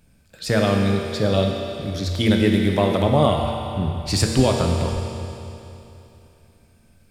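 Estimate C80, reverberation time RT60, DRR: 3.5 dB, 3.0 s, 1.0 dB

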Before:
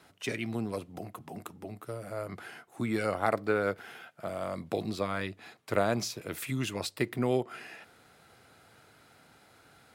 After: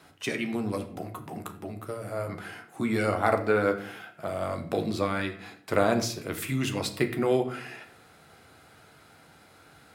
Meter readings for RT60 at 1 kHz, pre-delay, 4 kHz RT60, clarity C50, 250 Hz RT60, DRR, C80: 0.50 s, 11 ms, 0.35 s, 11.5 dB, 0.80 s, 5.0 dB, 14.5 dB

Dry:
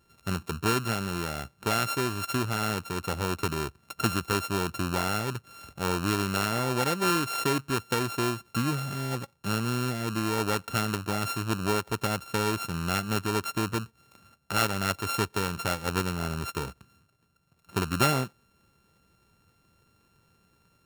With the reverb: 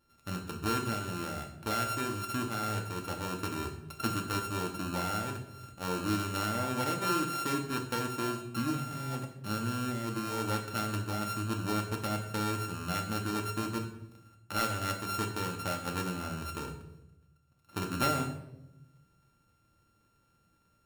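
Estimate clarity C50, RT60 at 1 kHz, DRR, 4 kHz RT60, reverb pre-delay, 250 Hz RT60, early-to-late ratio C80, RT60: 8.5 dB, 0.75 s, 2.0 dB, 0.65 s, 3 ms, 1.3 s, 11.5 dB, 0.90 s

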